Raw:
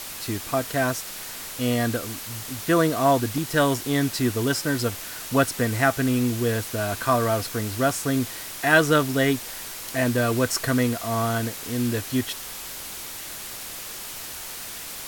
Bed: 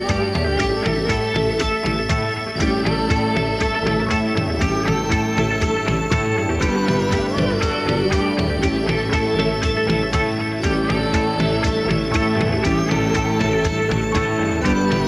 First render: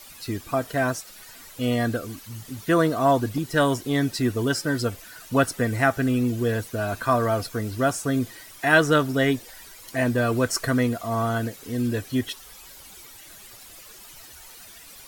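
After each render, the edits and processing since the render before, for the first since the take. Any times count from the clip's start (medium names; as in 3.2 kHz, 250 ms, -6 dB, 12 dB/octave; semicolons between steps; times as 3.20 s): noise reduction 13 dB, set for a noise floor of -36 dBFS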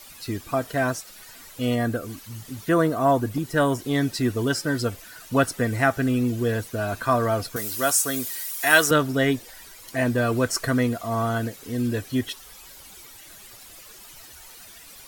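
1.74–3.79 s: dynamic bell 4.1 kHz, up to -6 dB, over -44 dBFS, Q 0.86; 7.56–8.91 s: RIAA curve recording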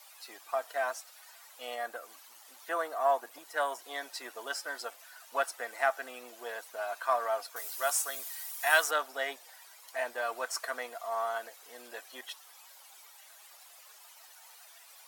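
partial rectifier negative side -3 dB; ladder high-pass 620 Hz, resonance 40%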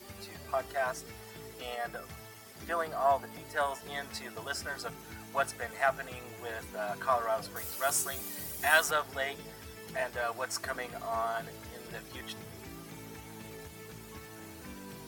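add bed -29 dB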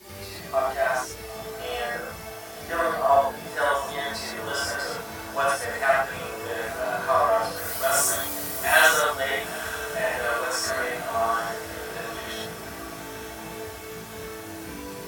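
echo that smears into a reverb 867 ms, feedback 67%, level -14.5 dB; gated-style reverb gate 160 ms flat, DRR -8 dB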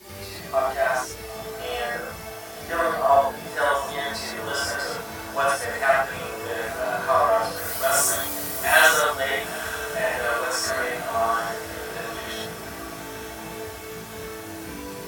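trim +1.5 dB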